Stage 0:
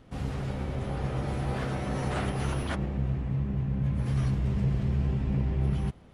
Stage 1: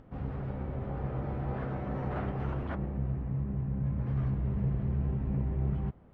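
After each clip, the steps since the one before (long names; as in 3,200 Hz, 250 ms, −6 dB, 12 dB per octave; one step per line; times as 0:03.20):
low-pass filter 1,500 Hz 12 dB per octave
upward compression, threshold −46 dBFS
level −3.5 dB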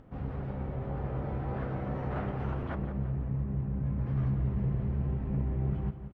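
repeating echo 174 ms, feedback 47%, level −11 dB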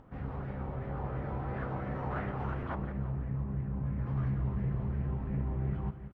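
auto-filter bell 2.9 Hz 910–2,000 Hz +8 dB
level −2.5 dB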